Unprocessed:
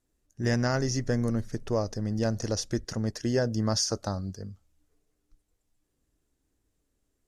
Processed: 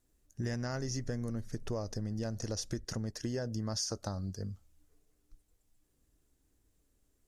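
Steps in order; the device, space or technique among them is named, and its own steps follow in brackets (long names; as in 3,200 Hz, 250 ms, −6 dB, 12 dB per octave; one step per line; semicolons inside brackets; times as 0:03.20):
ASMR close-microphone chain (low-shelf EQ 120 Hz +4 dB; downward compressor 5 to 1, threshold −34 dBFS, peak gain reduction 12 dB; high-shelf EQ 7,900 Hz +6 dB)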